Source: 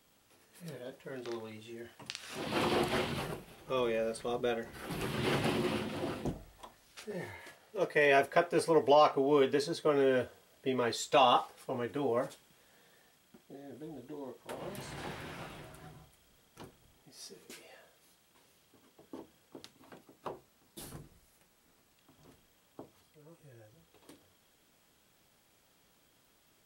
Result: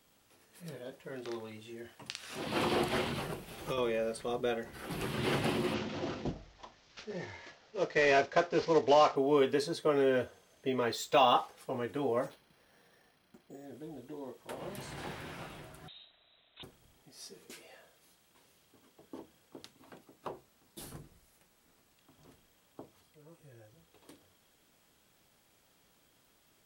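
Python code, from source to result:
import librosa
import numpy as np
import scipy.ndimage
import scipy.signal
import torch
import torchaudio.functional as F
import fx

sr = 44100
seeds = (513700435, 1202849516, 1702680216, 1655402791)

y = fx.band_squash(x, sr, depth_pct=100, at=(3.06, 3.78))
y = fx.cvsd(y, sr, bps=32000, at=(5.74, 9.16))
y = fx.resample_linear(y, sr, factor=2, at=(10.1, 11.61))
y = fx.resample_bad(y, sr, factor=6, down='filtered', up='hold', at=(12.26, 13.65))
y = fx.block_float(y, sr, bits=7, at=(14.88, 15.38))
y = fx.freq_invert(y, sr, carrier_hz=3900, at=(15.88, 16.63))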